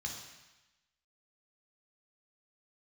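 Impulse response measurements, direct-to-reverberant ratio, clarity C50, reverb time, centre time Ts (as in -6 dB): 0.0 dB, 4.0 dB, 1.0 s, 42 ms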